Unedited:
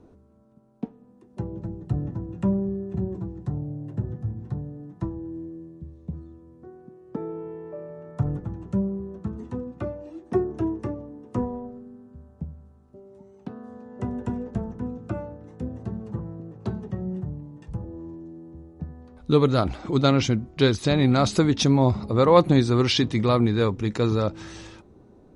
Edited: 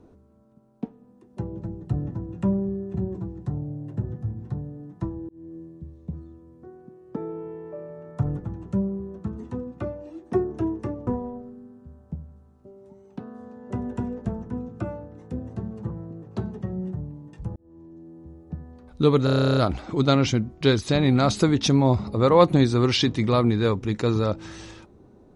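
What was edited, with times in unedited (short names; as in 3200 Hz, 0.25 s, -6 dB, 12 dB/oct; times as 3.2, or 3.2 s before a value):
5.29–5.57 fade in
11.07–11.36 cut
17.85–18.84 fade in equal-power
19.53 stutter 0.03 s, 12 plays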